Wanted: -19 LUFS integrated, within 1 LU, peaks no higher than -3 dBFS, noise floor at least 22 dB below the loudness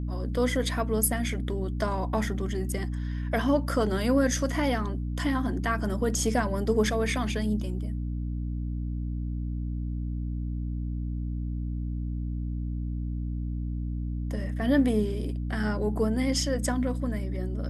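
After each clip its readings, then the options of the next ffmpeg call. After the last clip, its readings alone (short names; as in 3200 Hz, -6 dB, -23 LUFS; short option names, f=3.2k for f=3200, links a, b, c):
hum 60 Hz; harmonics up to 300 Hz; hum level -28 dBFS; loudness -29.0 LUFS; peak -10.5 dBFS; loudness target -19.0 LUFS
-> -af "bandreject=f=60:t=h:w=4,bandreject=f=120:t=h:w=4,bandreject=f=180:t=h:w=4,bandreject=f=240:t=h:w=4,bandreject=f=300:t=h:w=4"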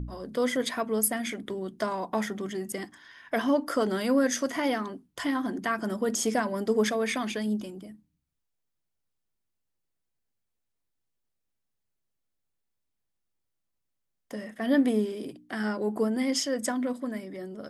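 hum none; loudness -29.0 LUFS; peak -10.5 dBFS; loudness target -19.0 LUFS
-> -af "volume=10dB,alimiter=limit=-3dB:level=0:latency=1"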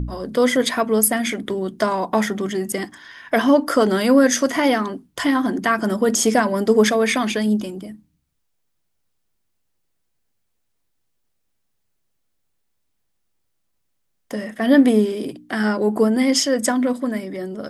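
loudness -19.0 LUFS; peak -3.0 dBFS; noise floor -71 dBFS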